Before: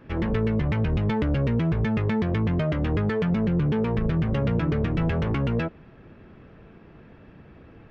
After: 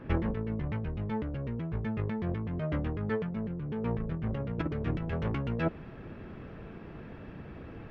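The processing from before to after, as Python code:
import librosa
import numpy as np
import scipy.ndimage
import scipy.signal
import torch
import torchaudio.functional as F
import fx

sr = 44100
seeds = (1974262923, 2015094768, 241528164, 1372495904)

y = fx.high_shelf(x, sr, hz=3400.0, db=fx.steps((0.0, -11.0), (4.53, -2.5)))
y = fx.over_compress(y, sr, threshold_db=-28.0, ratio=-0.5)
y = y * 10.0 ** (-2.5 / 20.0)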